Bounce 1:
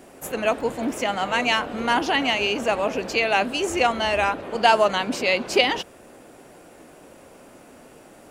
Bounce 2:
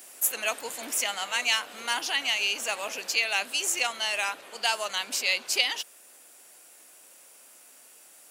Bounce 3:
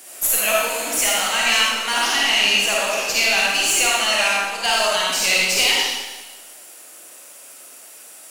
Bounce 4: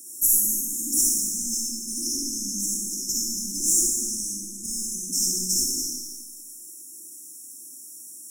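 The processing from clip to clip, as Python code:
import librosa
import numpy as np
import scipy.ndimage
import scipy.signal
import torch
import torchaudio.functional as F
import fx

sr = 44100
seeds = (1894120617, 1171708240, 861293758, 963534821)

y1 = fx.rider(x, sr, range_db=3, speed_s=0.5)
y1 = np.diff(y1, prepend=0.0)
y1 = y1 * 10.0 ** (6.5 / 20.0)
y2 = fx.tube_stage(y1, sr, drive_db=18.0, bias=0.35)
y2 = fx.rev_freeverb(y2, sr, rt60_s=1.2, hf_ratio=1.0, predelay_ms=10, drr_db=-5.0)
y2 = y2 * 10.0 ** (6.0 / 20.0)
y3 = fx.brickwall_bandstop(y2, sr, low_hz=370.0, high_hz=5200.0)
y3 = y3 + 10.0 ** (-11.0 / 20.0) * np.pad(y3, (int(197 * sr / 1000.0), 0))[:len(y3)]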